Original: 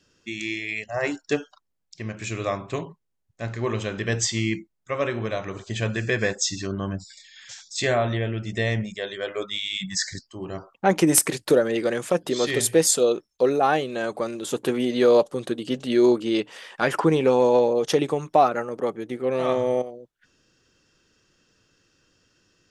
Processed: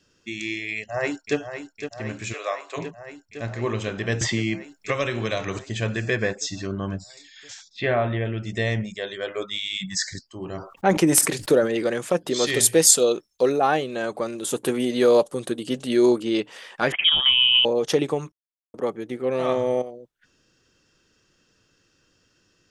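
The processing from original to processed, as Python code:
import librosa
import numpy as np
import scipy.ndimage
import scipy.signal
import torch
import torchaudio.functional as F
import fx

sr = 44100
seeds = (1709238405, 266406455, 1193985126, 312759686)

y = fx.echo_throw(x, sr, start_s=0.76, length_s=0.61, ms=510, feedback_pct=80, wet_db=-9.0)
y = fx.highpass(y, sr, hz=500.0, slope=24, at=(2.32, 2.76), fade=0.02)
y = fx.band_squash(y, sr, depth_pct=100, at=(4.21, 5.59))
y = fx.high_shelf(y, sr, hz=fx.line((6.15, 3800.0), (6.83, 5600.0)), db=-8.0, at=(6.15, 6.83), fade=0.02)
y = fx.lowpass(y, sr, hz=3100.0, slope=24, at=(7.68, 8.24), fade=0.02)
y = fx.sustainer(y, sr, db_per_s=110.0, at=(10.37, 11.84))
y = fx.high_shelf(y, sr, hz=3300.0, db=7.0, at=(12.34, 13.52))
y = fx.peak_eq(y, sr, hz=9800.0, db=9.5, octaves=0.77, at=(14.38, 16.23))
y = fx.freq_invert(y, sr, carrier_hz=3500, at=(16.92, 17.65))
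y = fx.edit(y, sr, fx.silence(start_s=18.32, length_s=0.42), tone=tone)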